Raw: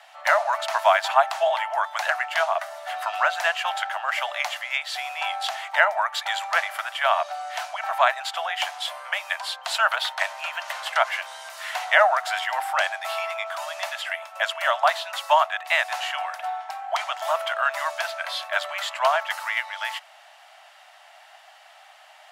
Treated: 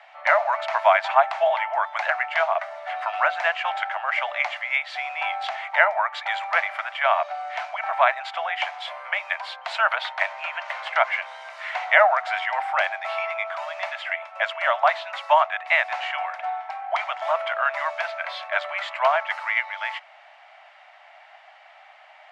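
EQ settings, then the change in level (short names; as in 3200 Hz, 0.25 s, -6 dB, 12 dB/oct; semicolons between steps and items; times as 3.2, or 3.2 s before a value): tape spacing loss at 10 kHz 26 dB; bell 2200 Hz +8 dB 0.34 oct; +3.0 dB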